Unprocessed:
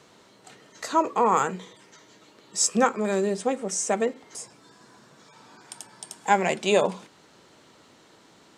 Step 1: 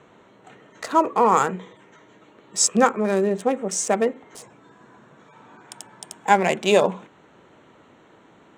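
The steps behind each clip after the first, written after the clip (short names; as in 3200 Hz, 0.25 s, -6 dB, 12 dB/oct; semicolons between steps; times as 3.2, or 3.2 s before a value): Wiener smoothing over 9 samples; gain +4 dB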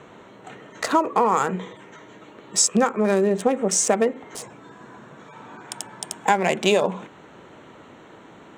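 compressor 6:1, threshold -22 dBFS, peak gain reduction 11.5 dB; gain +6.5 dB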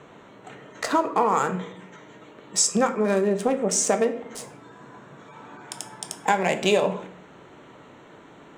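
shoebox room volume 120 m³, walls mixed, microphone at 0.35 m; gain -2.5 dB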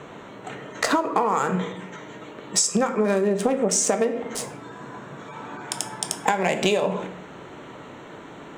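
compressor 12:1, threshold -24 dBFS, peak gain reduction 10 dB; gain +7 dB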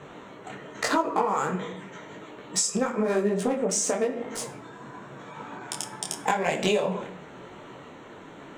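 detuned doubles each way 32 cents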